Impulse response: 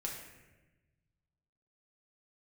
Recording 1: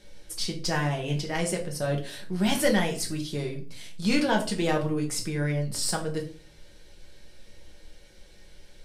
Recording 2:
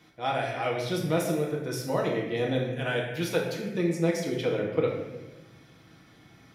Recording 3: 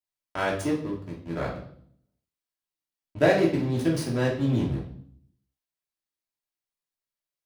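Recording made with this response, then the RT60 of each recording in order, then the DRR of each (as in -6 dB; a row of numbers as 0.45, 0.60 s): 2; 0.40, 1.1, 0.60 s; 0.5, -2.5, -4.5 dB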